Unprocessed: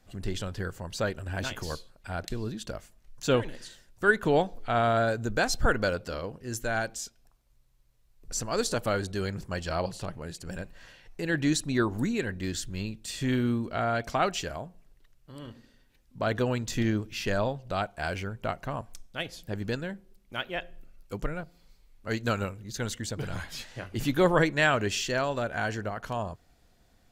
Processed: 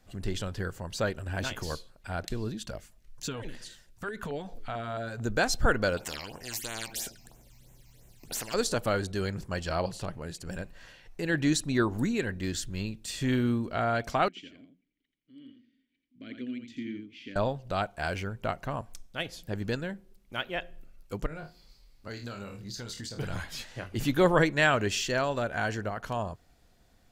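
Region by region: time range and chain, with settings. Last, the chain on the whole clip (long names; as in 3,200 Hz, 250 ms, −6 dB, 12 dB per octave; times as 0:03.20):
0:02.53–0:05.21: downward compressor, threshold −30 dBFS + auto-filter notch saw down 4.5 Hz 230–1,600 Hz
0:05.97–0:08.54: parametric band 1,200 Hz −11 dB 0.51 octaves + all-pass phaser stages 8, 3 Hz, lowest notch 430–4,600 Hz + every bin compressed towards the loudest bin 4 to 1
0:14.28–0:17.36: formant filter i + single-tap delay 85 ms −6.5 dB
0:21.26–0:23.19: parametric band 4,700 Hz +9.5 dB 0.5 octaves + flutter between parallel walls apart 4.3 metres, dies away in 0.22 s + downward compressor, threshold −36 dBFS
whole clip: no processing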